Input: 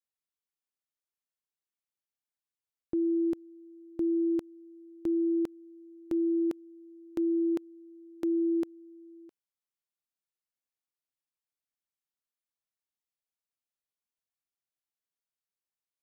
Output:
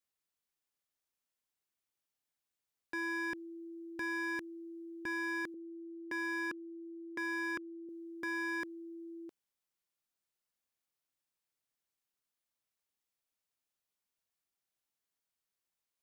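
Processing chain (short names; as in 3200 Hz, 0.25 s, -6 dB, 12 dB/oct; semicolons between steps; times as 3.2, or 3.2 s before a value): 5.54–7.89 steep low-pass 1100 Hz; wavefolder -35.5 dBFS; gain +3.5 dB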